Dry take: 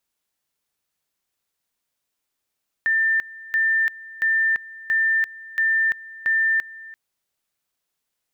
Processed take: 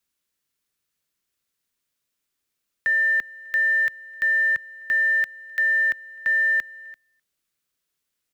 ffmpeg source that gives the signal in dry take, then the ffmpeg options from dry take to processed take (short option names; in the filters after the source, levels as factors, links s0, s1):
-f lavfi -i "aevalsrc='pow(10,(-16.5-20*gte(mod(t,0.68),0.34))/20)*sin(2*PI*1790*t)':d=4.08:s=44100"
-filter_complex "[0:a]acrossover=split=130|440|850[s0][s1][s2][s3];[s2]acrusher=samples=38:mix=1:aa=0.000001[s4];[s0][s1][s4][s3]amix=inputs=4:normalize=0,asplit=2[s5][s6];[s6]adelay=256.6,volume=0.0398,highshelf=f=4000:g=-5.77[s7];[s5][s7]amix=inputs=2:normalize=0"